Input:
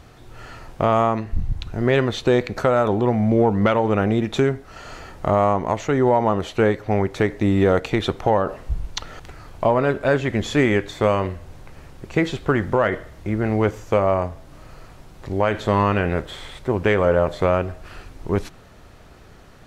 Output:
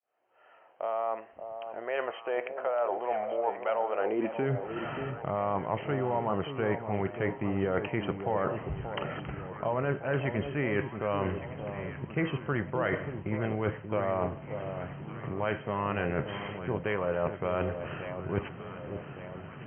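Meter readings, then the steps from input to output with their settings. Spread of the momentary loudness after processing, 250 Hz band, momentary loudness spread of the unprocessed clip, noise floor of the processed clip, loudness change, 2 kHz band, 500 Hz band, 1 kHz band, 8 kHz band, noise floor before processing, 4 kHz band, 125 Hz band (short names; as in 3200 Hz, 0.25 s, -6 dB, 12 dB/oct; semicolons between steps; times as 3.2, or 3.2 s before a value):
8 LU, -12.5 dB, 13 LU, -48 dBFS, -12.0 dB, -9.5 dB, -11.0 dB, -10.0 dB, under -35 dB, -46 dBFS, -13.5 dB, -11.0 dB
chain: opening faded in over 5.04 s; dynamic EQ 200 Hz, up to -7 dB, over -34 dBFS, Q 0.76; high-pass sweep 610 Hz -> 140 Hz, 3.94–4.52; reverse; compressor, threshold -27 dBFS, peak gain reduction 13.5 dB; reverse; brick-wall FIR low-pass 3200 Hz; echo with dull and thin repeats by turns 0.581 s, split 930 Hz, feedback 69%, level -8 dB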